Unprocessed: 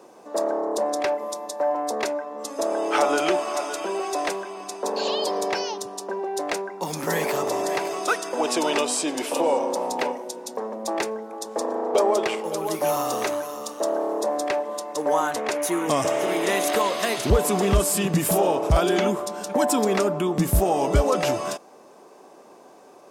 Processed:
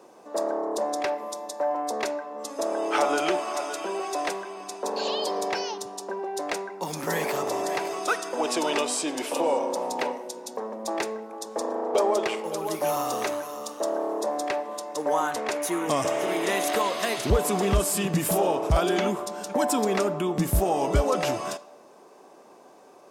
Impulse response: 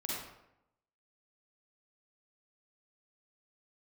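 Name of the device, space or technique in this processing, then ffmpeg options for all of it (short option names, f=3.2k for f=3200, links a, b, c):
filtered reverb send: -filter_complex "[0:a]asplit=2[a][b];[b]highpass=460,lowpass=6.7k[c];[1:a]atrim=start_sample=2205[d];[c][d]afir=irnorm=-1:irlink=0,volume=-17.5dB[e];[a][e]amix=inputs=2:normalize=0,volume=-3dB"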